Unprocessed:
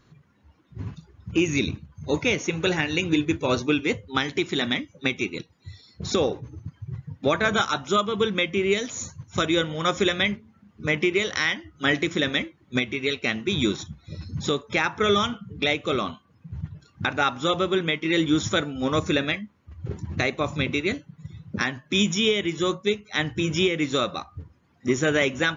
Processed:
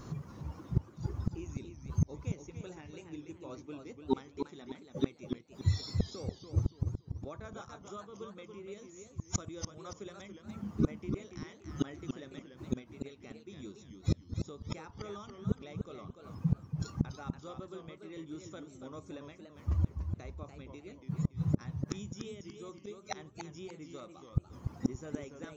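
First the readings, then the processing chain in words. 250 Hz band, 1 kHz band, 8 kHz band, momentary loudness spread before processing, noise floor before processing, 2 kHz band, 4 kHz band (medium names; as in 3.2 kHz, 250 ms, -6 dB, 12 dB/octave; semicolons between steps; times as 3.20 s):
-12.5 dB, -20.0 dB, no reading, 15 LU, -62 dBFS, -29.5 dB, -25.0 dB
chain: inverted gate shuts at -29 dBFS, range -36 dB; high-order bell 2.5 kHz -9.5 dB; modulated delay 288 ms, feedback 36%, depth 168 cents, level -7 dB; trim +13 dB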